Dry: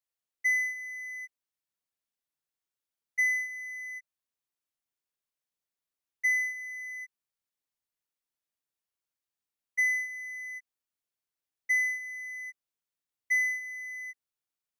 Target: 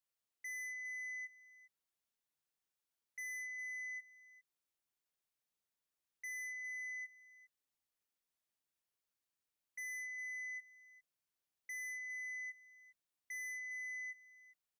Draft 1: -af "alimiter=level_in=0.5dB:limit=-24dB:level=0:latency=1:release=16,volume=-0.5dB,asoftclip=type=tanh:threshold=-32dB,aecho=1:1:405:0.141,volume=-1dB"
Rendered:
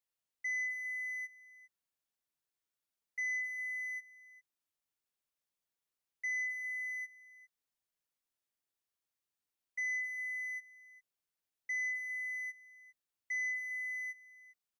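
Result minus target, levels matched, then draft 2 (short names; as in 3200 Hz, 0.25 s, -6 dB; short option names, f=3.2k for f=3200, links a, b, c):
soft clip: distortion -7 dB
-af "alimiter=level_in=0.5dB:limit=-24dB:level=0:latency=1:release=16,volume=-0.5dB,asoftclip=type=tanh:threshold=-42.5dB,aecho=1:1:405:0.141,volume=-1dB"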